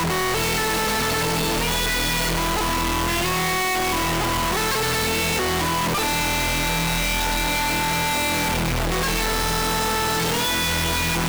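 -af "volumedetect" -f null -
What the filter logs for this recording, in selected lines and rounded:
mean_volume: -22.0 dB
max_volume: -22.0 dB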